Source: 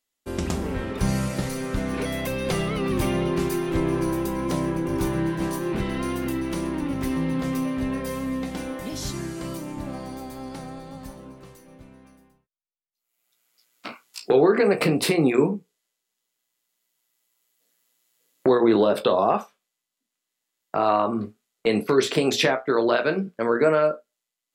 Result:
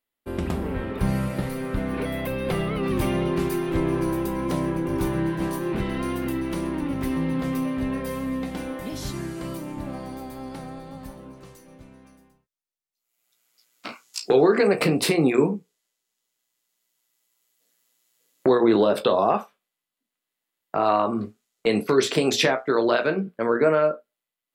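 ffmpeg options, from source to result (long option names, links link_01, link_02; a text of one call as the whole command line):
ffmpeg -i in.wav -af "asetnsamples=nb_out_samples=441:pad=0,asendcmd='2.83 equalizer g -5.5;11.33 equalizer g 2;13.89 equalizer g 8.5;14.67 equalizer g 1.5;19.38 equalizer g -7.5;20.85 equalizer g 2;23.06 equalizer g -10',equalizer=frequency=6400:width_type=o:width=1.1:gain=-14.5" out.wav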